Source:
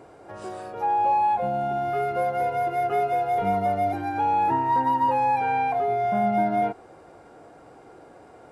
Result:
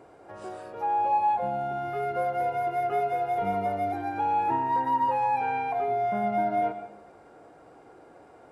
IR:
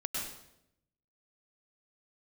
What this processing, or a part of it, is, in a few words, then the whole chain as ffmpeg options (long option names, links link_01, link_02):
filtered reverb send: -filter_complex "[0:a]asplit=2[link_01][link_02];[link_02]highpass=200,lowpass=3700[link_03];[1:a]atrim=start_sample=2205[link_04];[link_03][link_04]afir=irnorm=-1:irlink=0,volume=-10.5dB[link_05];[link_01][link_05]amix=inputs=2:normalize=0,volume=-5.5dB"